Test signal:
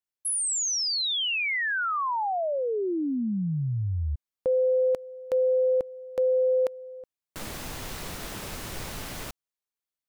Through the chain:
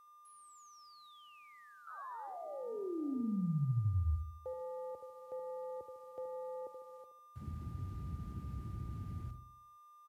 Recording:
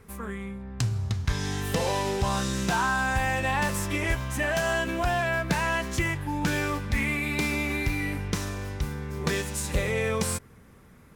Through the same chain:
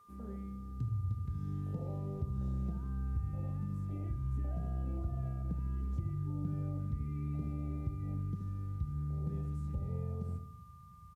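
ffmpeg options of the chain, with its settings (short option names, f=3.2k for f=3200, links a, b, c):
-filter_complex "[0:a]highpass=f=67:w=0.5412,highpass=f=67:w=1.3066,highshelf=f=2.4k:g=-10,acrossover=split=320[a][b];[b]acompressor=threshold=-40dB:ratio=4:attack=0.64:release=81:knee=2.83:detection=peak[c];[a][c]amix=inputs=2:normalize=0,asubboost=boost=4:cutoff=130,afwtdn=0.0251,acompressor=threshold=-27dB:ratio=5:attack=10:release=404:knee=6:detection=peak,aeval=exprs='val(0)+0.00224*sin(2*PI*1200*n/s)':c=same,acrusher=bits=10:mix=0:aa=0.000001,asplit=2[d][e];[e]adelay=75,lowpass=f=1k:p=1,volume=-7dB,asplit=2[f][g];[g]adelay=75,lowpass=f=1k:p=1,volume=0.49,asplit=2[h][i];[i]adelay=75,lowpass=f=1k:p=1,volume=0.49,asplit=2[j][k];[k]adelay=75,lowpass=f=1k:p=1,volume=0.49,asplit=2[l][m];[m]adelay=75,lowpass=f=1k:p=1,volume=0.49,asplit=2[n][o];[o]adelay=75,lowpass=f=1k:p=1,volume=0.49[p];[d][f][h][j][l][n][p]amix=inputs=7:normalize=0,aresample=32000,aresample=44100,volume=-6dB"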